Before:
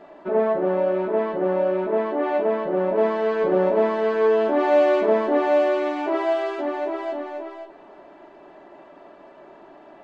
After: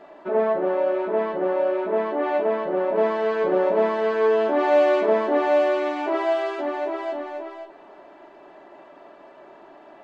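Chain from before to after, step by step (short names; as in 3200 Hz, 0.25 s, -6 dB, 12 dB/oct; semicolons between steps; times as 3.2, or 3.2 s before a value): low shelf 310 Hz -6 dB; de-hum 92.53 Hz, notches 2; gain +1 dB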